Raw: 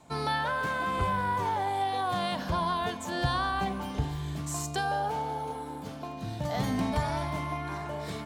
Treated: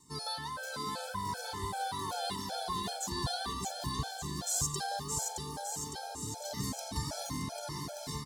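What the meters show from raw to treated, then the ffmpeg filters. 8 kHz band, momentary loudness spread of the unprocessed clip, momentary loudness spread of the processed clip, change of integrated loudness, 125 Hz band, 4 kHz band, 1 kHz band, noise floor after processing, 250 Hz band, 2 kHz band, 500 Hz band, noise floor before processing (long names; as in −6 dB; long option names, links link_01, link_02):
+7.5 dB, 7 LU, 6 LU, −5.5 dB, −7.0 dB, 0.0 dB, −8.5 dB, −43 dBFS, −8.0 dB, −10.0 dB, −8.0 dB, −40 dBFS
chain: -af "highshelf=frequency=3700:width_type=q:width=1.5:gain=13,aecho=1:1:620|1178|1680|2132|2539:0.631|0.398|0.251|0.158|0.1,afftfilt=real='re*gt(sin(2*PI*2.6*pts/sr)*(1-2*mod(floor(b*sr/1024/440),2)),0)':imag='im*gt(sin(2*PI*2.6*pts/sr)*(1-2*mod(floor(b*sr/1024/440),2)),0)':win_size=1024:overlap=0.75,volume=-6.5dB"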